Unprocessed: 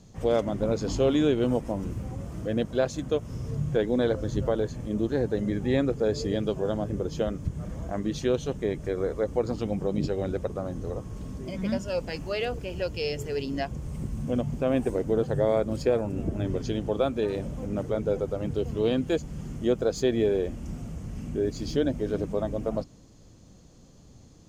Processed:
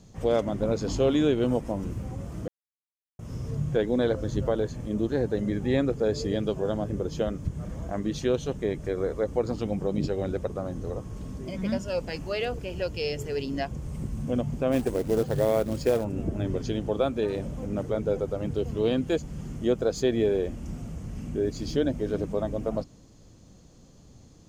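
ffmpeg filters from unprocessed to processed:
ffmpeg -i in.wav -filter_complex "[0:a]asplit=3[link_01][link_02][link_03];[link_01]afade=type=out:start_time=14.71:duration=0.02[link_04];[link_02]acrusher=bits=5:mode=log:mix=0:aa=0.000001,afade=type=in:start_time=14.71:duration=0.02,afade=type=out:start_time=16.03:duration=0.02[link_05];[link_03]afade=type=in:start_time=16.03:duration=0.02[link_06];[link_04][link_05][link_06]amix=inputs=3:normalize=0,asplit=3[link_07][link_08][link_09];[link_07]atrim=end=2.48,asetpts=PTS-STARTPTS,afade=type=out:start_time=2.476:duration=0.004:curve=hsin[link_10];[link_08]atrim=start=2.48:end=3.19,asetpts=PTS-STARTPTS,volume=0[link_11];[link_09]atrim=start=3.19,asetpts=PTS-STARTPTS,afade=type=in:duration=0.004:curve=hsin[link_12];[link_10][link_11][link_12]concat=n=3:v=0:a=1" out.wav

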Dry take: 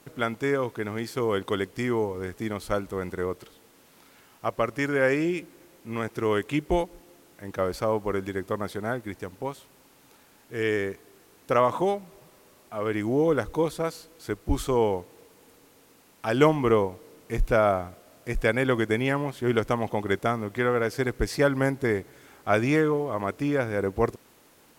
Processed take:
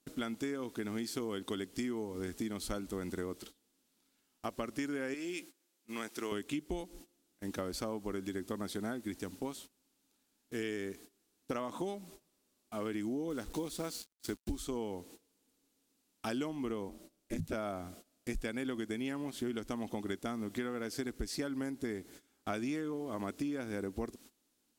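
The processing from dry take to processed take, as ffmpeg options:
ffmpeg -i in.wav -filter_complex "[0:a]asettb=1/sr,asplit=3[link_01][link_02][link_03];[link_01]atrim=end=5.144[link_04];[link_02]atrim=start=5.14:end=6.32,asetpts=PTS-STARTPTS,afade=type=in:duration=0.004:curve=qsin,afade=type=out:start_time=1.176:duration=0.004:curve=qsin,highpass=frequency=760:poles=1[link_05];[link_03]atrim=start=6.316[link_06];[link_04][link_05]acrossfade=duration=0.004:curve1=hsin:curve2=qsin[link_07];[link_07][link_06]acrossfade=duration=0.004:curve1=qsin:curve2=hsin,asettb=1/sr,asplit=3[link_08][link_09][link_10];[link_08]atrim=end=13.304[link_11];[link_09]atrim=start=13.3:end=14.61,asetpts=PTS-STARTPTS,afade=type=in:duration=0.004:curve=qsin,afade=type=out:start_time=1.306:duration=0.004:curve=qsin,acrusher=bits=6:mix=0:aa=0.5[link_12];[link_10]atrim=start=14.606[link_13];[link_11][link_12]acrossfade=duration=0.004:curve1=hsin:curve2=qsin[link_14];[link_14][link_13]acrossfade=duration=0.004:curve1=qsin:curve2=hsin,asettb=1/sr,asplit=3[link_15][link_16][link_17];[link_15]atrim=end=16.894[link_18];[link_16]atrim=start=16.89:end=17.53,asetpts=PTS-STARTPTS,afade=type=in:duration=0.004:curve=qsin,afade=type=out:start_time=0.636:duration=0.004:curve=qsin,aeval=exprs='val(0)*sin(2*PI*130*n/s)':channel_layout=same[link_19];[link_17]atrim=start=17.526[link_20];[link_18][link_19]acrossfade=duration=0.004:curve1=hsin:curve2=qsin[link_21];[link_21][link_20]acrossfade=duration=0.004:curve1=qsin:curve2=hsin,agate=range=-20dB:threshold=-47dB:ratio=16:detection=peak,equalizer=frequency=125:width_type=o:width=1:gain=-11,equalizer=frequency=250:width_type=o:width=1:gain=7,equalizer=frequency=500:width_type=o:width=1:gain=-7,equalizer=frequency=1000:width_type=o:width=1:gain=-6,equalizer=frequency=2000:width_type=o:width=1:gain=-5,equalizer=frequency=4000:width_type=o:width=1:gain=3,equalizer=frequency=8000:width_type=o:width=1:gain=4,acompressor=threshold=-34dB:ratio=10" out.wav

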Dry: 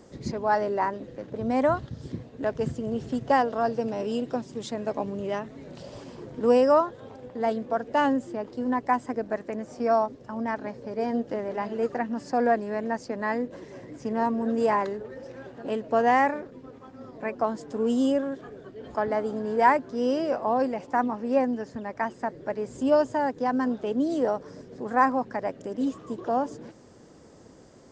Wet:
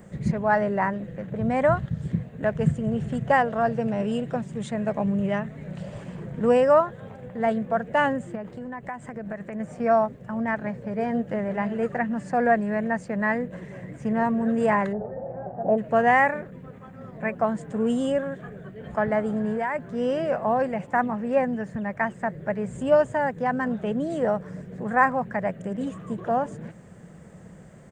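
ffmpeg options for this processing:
ffmpeg -i in.wav -filter_complex "[0:a]asettb=1/sr,asplit=3[link_01][link_02][link_03];[link_01]atrim=end=8.354[link_04];[link_02]atrim=start=8.35:end=9.6,asetpts=PTS-STARTPTS,afade=type=in:duration=0.004:curve=qsin,afade=type=out:start_time=1.246:duration=0.004:curve=qsin,acompressor=threshold=-33dB:ratio=4:attack=3.2:release=140:knee=1:detection=peak[link_05];[link_03]atrim=start=9.596[link_06];[link_04][link_05]acrossfade=duration=0.004:curve1=hsin:curve2=qsin[link_07];[link_07][link_06]acrossfade=duration=0.004:curve1=qsin:curve2=hsin,asplit=3[link_08][link_09][link_10];[link_08]afade=type=out:start_time=14.92:duration=0.02[link_11];[link_09]lowpass=frequency=740:width_type=q:width=6.3,afade=type=in:start_time=14.92:duration=0.02,afade=type=out:start_time=15.77:duration=0.02[link_12];[link_10]afade=type=in:start_time=15.77:duration=0.02[link_13];[link_11][link_12][link_13]amix=inputs=3:normalize=0,asettb=1/sr,asplit=3[link_14][link_15][link_16];[link_14]atrim=end=19.424[link_17];[link_15]atrim=start=19.42:end=19.89,asetpts=PTS-STARTPTS,afade=type=in:duration=0.004:curve=qsin,afade=type=out:start_time=0.466:duration=0.004:curve=qsin,acompressor=threshold=-25dB:ratio=6:attack=3.2:release=140:knee=1:detection=peak[link_18];[link_16]atrim=start=19.886[link_19];[link_17][link_18]acrossfade=duration=0.004:curve1=hsin:curve2=qsin[link_20];[link_20][link_19]acrossfade=duration=0.004:curve1=qsin:curve2=hsin,firequalizer=gain_entry='entry(110,0);entry(180,9);entry(260,-11);entry(630,-3);entry(930,-7);entry(1800,1);entry(5100,-18);entry(9700,7)':delay=0.05:min_phase=1,volume=6.5dB" out.wav

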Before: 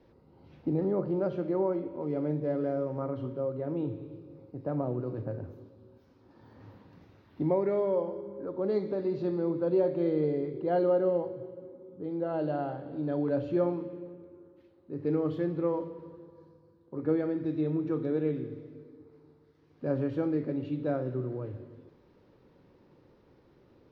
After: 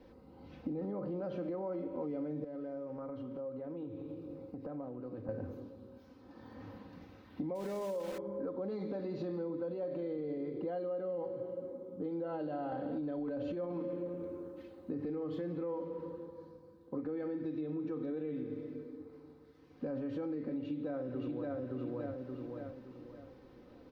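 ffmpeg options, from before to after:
ffmpeg -i in.wav -filter_complex "[0:a]asettb=1/sr,asplit=3[link_01][link_02][link_03];[link_01]atrim=end=2.444[link_04];[link_02]atrim=start=2.44:end=5.29,asetpts=PTS-STARTPTS,afade=type=in:duration=0.004:curve=qsin,afade=type=out:start_time=2.846:duration=0.004:curve=qsin,acompressor=threshold=-43dB:ratio=6:attack=3.2:release=140:knee=1:detection=peak[link_05];[link_03]atrim=start=5.286[link_06];[link_04][link_05]acrossfade=duration=0.004:curve1=hsin:curve2=qsin[link_07];[link_07][link_06]acrossfade=duration=0.004:curve1=qsin:curve2=hsin,asettb=1/sr,asplit=3[link_08][link_09][link_10];[link_08]atrim=end=7.554[link_11];[link_09]atrim=start=7.55:end=8.18,asetpts=PTS-STARTPTS,afade=type=in:duration=0.004:curve=qsin,afade=type=out:start_time=0.626:duration=0.004:curve=qsin,aeval=exprs='val(0)*gte(abs(val(0)),0.0106)':channel_layout=same[link_12];[link_10]atrim=start=8.176[link_13];[link_11][link_12]acrossfade=duration=0.004:curve1=hsin:curve2=qsin[link_14];[link_14][link_13]acrossfade=duration=0.004:curve1=qsin:curve2=hsin,asplit=2[link_15][link_16];[link_16]afade=type=in:start_time=20.58:duration=0.01,afade=type=out:start_time=21.57:duration=0.01,aecho=0:1:570|1140|1710|2280|2850:0.841395|0.294488|0.103071|0.0360748|0.0126262[link_17];[link_15][link_17]amix=inputs=2:normalize=0,asplit=3[link_18][link_19][link_20];[link_18]atrim=end=12.722[link_21];[link_19]atrim=start=12.718:end=15.102,asetpts=PTS-STARTPTS,volume=6.5dB[link_22];[link_20]atrim=start=15.098[link_23];[link_21][link_22]acrossfade=duration=0.004:curve1=hsin:curve2=hsin[link_24];[link_24][link_23]acrossfade=duration=0.004:curve1=hsin:curve2=hsin,alimiter=level_in=2.5dB:limit=-24dB:level=0:latency=1:release=39,volume=-2.5dB,aecho=1:1:3.9:0.53,acompressor=threshold=-38dB:ratio=6,volume=2.5dB" out.wav

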